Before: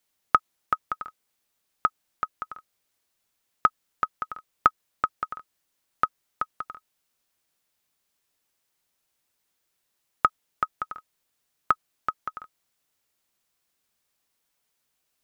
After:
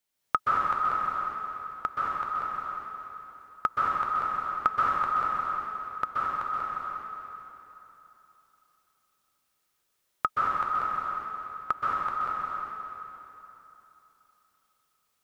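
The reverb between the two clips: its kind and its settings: plate-style reverb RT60 3.3 s, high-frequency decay 0.85×, pre-delay 0.115 s, DRR -7 dB; gain -6.5 dB

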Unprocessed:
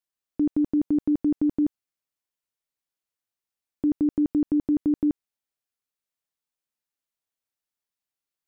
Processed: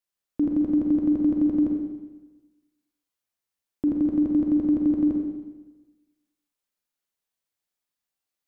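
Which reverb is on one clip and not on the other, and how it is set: Schroeder reverb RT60 1.2 s, combs from 31 ms, DRR 0.5 dB

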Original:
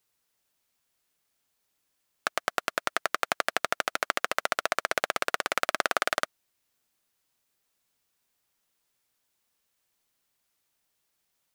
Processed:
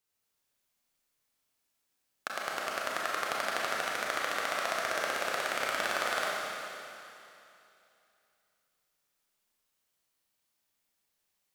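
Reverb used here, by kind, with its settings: Schroeder reverb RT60 2.8 s, combs from 29 ms, DRR -4.5 dB; gain -8.5 dB

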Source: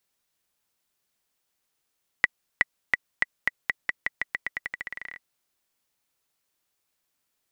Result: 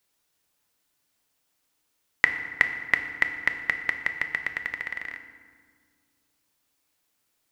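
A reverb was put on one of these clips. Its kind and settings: FDN reverb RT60 1.8 s, low-frequency decay 1.45×, high-frequency decay 0.6×, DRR 6 dB; gain +3 dB

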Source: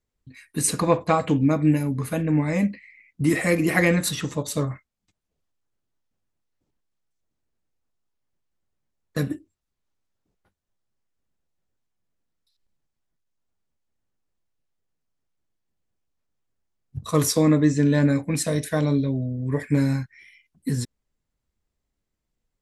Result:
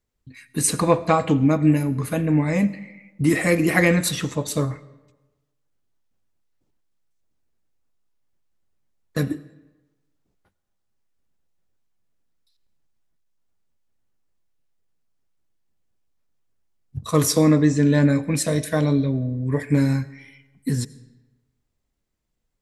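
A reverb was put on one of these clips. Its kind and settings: digital reverb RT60 1.1 s, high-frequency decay 0.75×, pre-delay 50 ms, DRR 18.5 dB; gain +2 dB

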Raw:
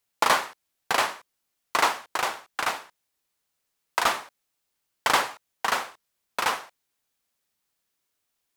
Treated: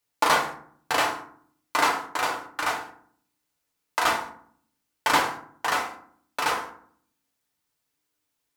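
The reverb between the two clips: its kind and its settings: FDN reverb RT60 0.56 s, low-frequency decay 1.55×, high-frequency decay 0.5×, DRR -0.5 dB; gain -2.5 dB

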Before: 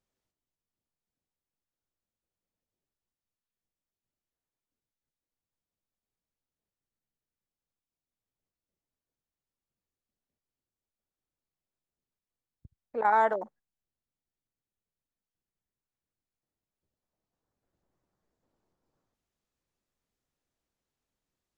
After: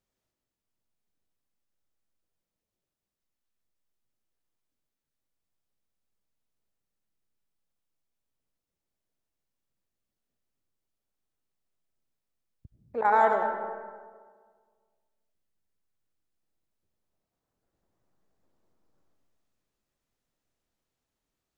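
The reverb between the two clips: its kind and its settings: digital reverb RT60 1.7 s, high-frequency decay 0.5×, pre-delay 55 ms, DRR 3.5 dB; gain +1 dB

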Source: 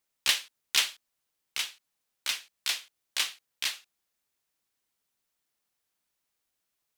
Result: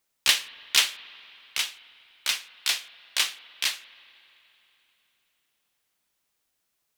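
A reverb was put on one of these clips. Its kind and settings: spring tank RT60 3.4 s, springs 48/59 ms, chirp 55 ms, DRR 16.5 dB; gain +4.5 dB

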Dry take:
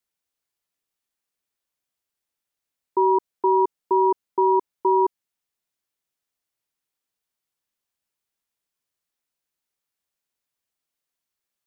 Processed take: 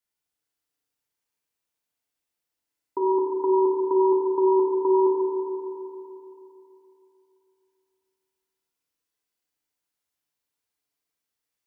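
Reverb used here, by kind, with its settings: FDN reverb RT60 3.1 s, high-frequency decay 0.8×, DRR -3 dB; gain -4.5 dB

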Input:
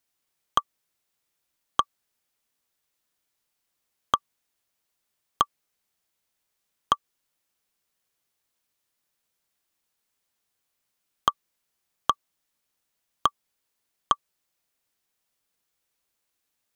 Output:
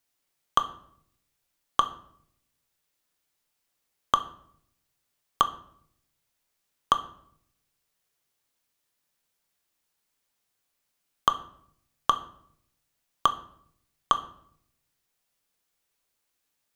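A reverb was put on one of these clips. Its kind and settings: shoebox room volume 120 m³, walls mixed, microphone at 0.31 m

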